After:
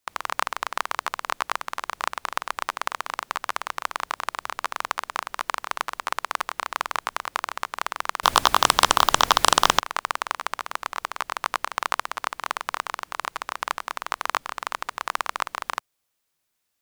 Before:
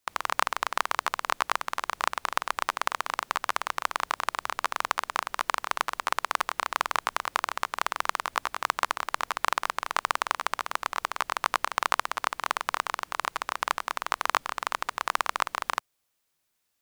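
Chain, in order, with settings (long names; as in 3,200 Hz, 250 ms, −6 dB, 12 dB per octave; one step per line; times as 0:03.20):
0:08.23–0:09.80: sine wavefolder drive 17 dB, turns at −3 dBFS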